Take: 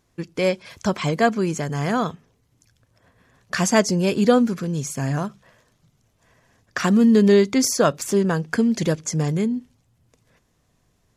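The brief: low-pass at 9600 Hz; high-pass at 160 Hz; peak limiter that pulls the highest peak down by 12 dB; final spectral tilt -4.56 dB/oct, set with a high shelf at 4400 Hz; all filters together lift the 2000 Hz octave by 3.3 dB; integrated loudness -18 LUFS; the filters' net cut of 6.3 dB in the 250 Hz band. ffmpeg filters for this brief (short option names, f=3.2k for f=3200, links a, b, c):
-af "highpass=160,lowpass=9.6k,equalizer=f=250:t=o:g=-6.5,equalizer=f=2k:t=o:g=5,highshelf=f=4.4k:g=-4.5,volume=8.5dB,alimiter=limit=-5.5dB:level=0:latency=1"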